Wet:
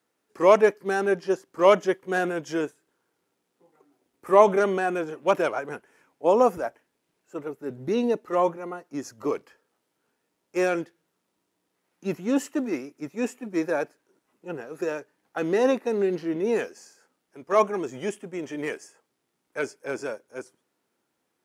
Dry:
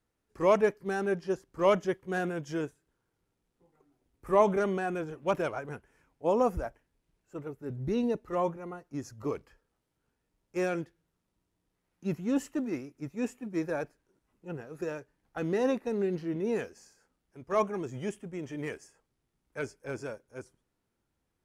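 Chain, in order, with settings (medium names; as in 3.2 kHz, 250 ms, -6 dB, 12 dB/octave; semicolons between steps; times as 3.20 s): high-pass 270 Hz 12 dB/octave; trim +7.5 dB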